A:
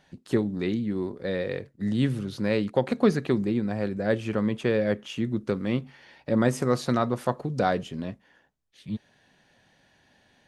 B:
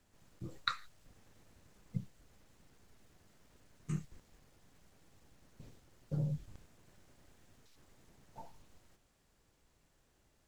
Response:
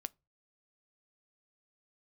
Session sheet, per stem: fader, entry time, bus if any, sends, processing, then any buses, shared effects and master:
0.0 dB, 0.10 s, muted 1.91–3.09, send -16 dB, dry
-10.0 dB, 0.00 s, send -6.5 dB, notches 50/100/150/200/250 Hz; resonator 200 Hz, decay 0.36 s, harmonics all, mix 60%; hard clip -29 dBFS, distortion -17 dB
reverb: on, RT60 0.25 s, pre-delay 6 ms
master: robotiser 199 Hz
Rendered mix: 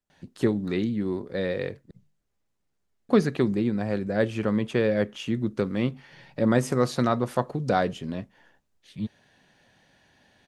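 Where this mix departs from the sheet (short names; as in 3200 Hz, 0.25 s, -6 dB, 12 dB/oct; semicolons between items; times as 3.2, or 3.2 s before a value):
stem B: send off; master: missing robotiser 199 Hz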